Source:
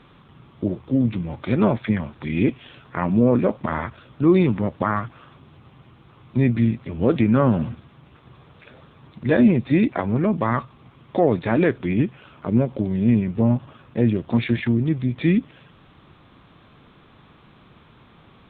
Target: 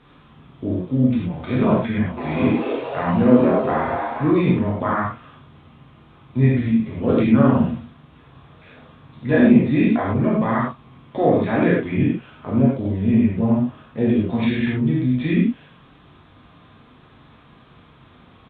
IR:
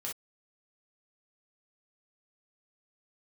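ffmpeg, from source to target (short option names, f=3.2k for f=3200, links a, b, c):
-filter_complex "[0:a]asplit=3[a][b][c];[a]afade=t=out:st=2.16:d=0.02[d];[b]asplit=9[e][f][g][h][i][j][k][l][m];[f]adelay=235,afreqshift=150,volume=-7dB[n];[g]adelay=470,afreqshift=300,volume=-11.4dB[o];[h]adelay=705,afreqshift=450,volume=-15.9dB[p];[i]adelay=940,afreqshift=600,volume=-20.3dB[q];[j]adelay=1175,afreqshift=750,volume=-24.7dB[r];[k]adelay=1410,afreqshift=900,volume=-29.2dB[s];[l]adelay=1645,afreqshift=1050,volume=-33.6dB[t];[m]adelay=1880,afreqshift=1200,volume=-38.1dB[u];[e][n][o][p][q][r][s][t][u]amix=inputs=9:normalize=0,afade=t=in:st=2.16:d=0.02,afade=t=out:st=4.26:d=0.02[v];[c]afade=t=in:st=4.26:d=0.02[w];[d][v][w]amix=inputs=3:normalize=0[x];[1:a]atrim=start_sample=2205,asetrate=23814,aresample=44100[y];[x][y]afir=irnorm=-1:irlink=0,volume=-3dB"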